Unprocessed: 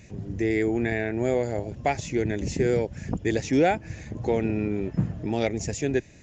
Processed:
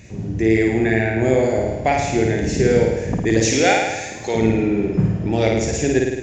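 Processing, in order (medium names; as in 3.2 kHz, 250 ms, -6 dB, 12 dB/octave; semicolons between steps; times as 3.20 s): 3.41–4.35 s: tilt EQ +4 dB/octave; flutter echo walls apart 9.2 m, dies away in 1.1 s; trim +5.5 dB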